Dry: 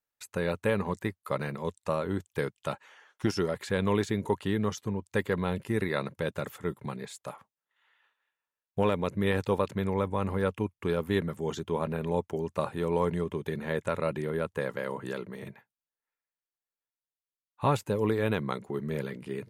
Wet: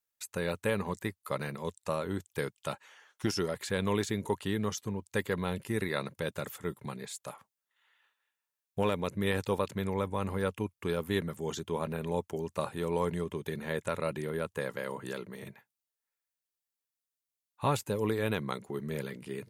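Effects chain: high shelf 3700 Hz +9 dB; gain -3.5 dB

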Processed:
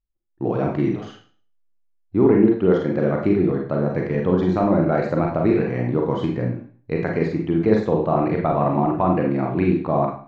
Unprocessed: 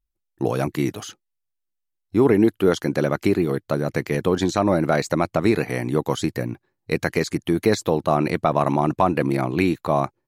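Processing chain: AGC gain up to 7.5 dB; tape spacing loss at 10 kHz 41 dB; Schroeder reverb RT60 0.44 s, combs from 33 ms, DRR 0 dB; gain -3.5 dB

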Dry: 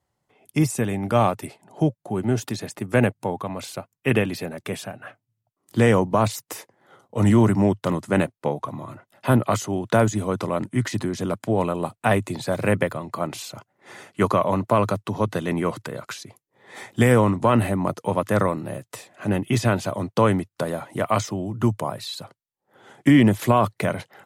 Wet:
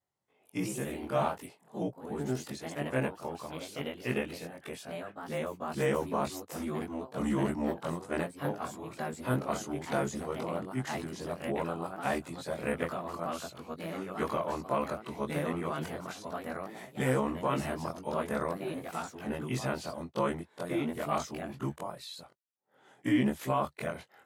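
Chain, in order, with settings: short-time reversal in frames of 47 ms; echoes that change speed 0.152 s, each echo +2 st, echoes 2, each echo -6 dB; low shelf 95 Hz -11 dB; gain -8 dB

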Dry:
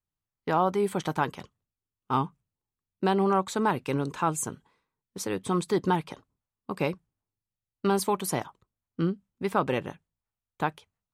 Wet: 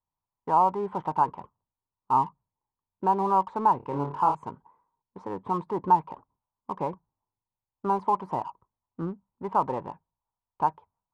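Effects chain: synth low-pass 950 Hz, resonance Q 7.2; 3.77–4.35 flutter echo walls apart 4.8 m, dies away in 0.29 s; in parallel at -4 dB: soft clip -38 dBFS, distortion 1 dB; on the sum: gain -7 dB

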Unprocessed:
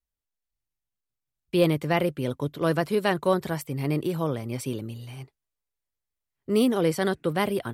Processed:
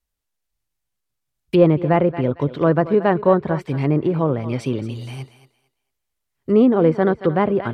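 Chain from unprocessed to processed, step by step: thinning echo 0.227 s, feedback 22%, high-pass 310 Hz, level -14 dB; treble ducked by the level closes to 1300 Hz, closed at -22.5 dBFS; gain +8 dB

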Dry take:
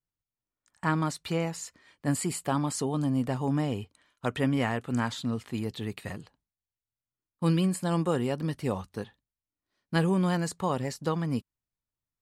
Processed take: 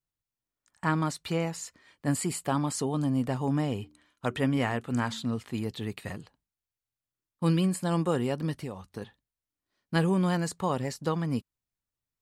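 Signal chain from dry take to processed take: 3.73–5.26 de-hum 74.66 Hz, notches 5; 8.61–9.02 compressor 6:1, threshold -34 dBFS, peak gain reduction 10 dB

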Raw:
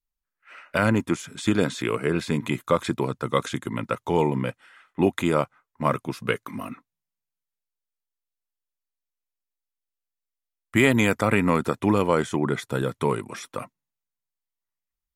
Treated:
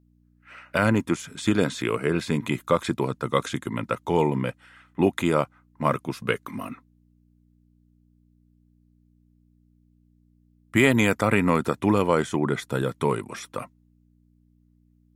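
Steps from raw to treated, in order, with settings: buzz 60 Hz, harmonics 5, -61 dBFS -3 dB/oct

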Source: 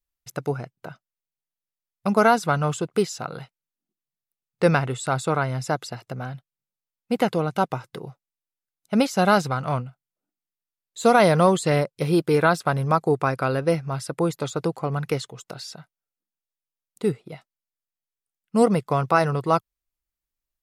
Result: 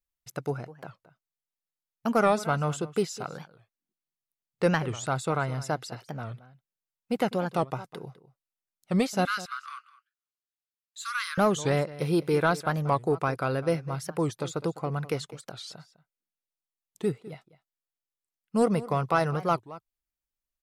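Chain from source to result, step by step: soft clip -6.5 dBFS, distortion -23 dB; 9.25–11.38 rippled Chebyshev high-pass 1100 Hz, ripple 3 dB; outdoor echo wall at 35 m, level -17 dB; record warp 45 rpm, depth 250 cents; gain -4.5 dB

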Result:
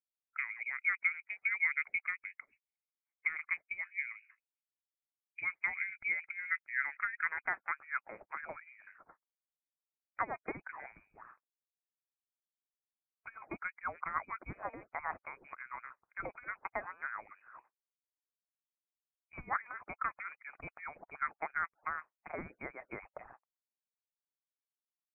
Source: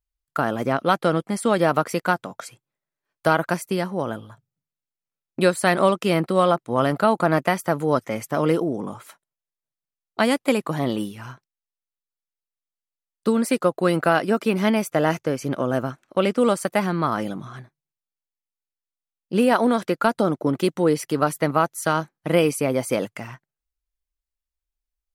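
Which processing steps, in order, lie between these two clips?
band-pass sweep 500 Hz -> 1800 Hz, 6.01–8.17; harmonic-percussive split harmonic -18 dB; inverted band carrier 2700 Hz; gain -5.5 dB

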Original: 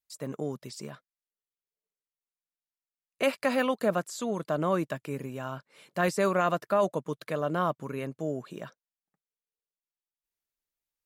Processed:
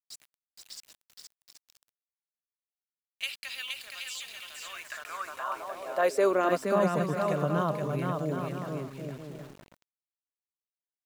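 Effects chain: bouncing-ball echo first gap 0.47 s, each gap 0.65×, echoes 5; high-pass sweep 3200 Hz -> 130 Hz, 4.51–7.18; sample gate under -44 dBFS; gain -3 dB

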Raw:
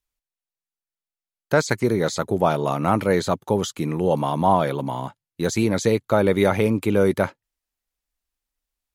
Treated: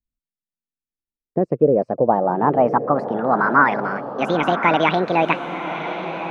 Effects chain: speed glide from 103% -> 181%; low-pass sweep 230 Hz -> 2500 Hz, 0.62–4.04; diffused feedback echo 1.041 s, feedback 42%, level -9 dB

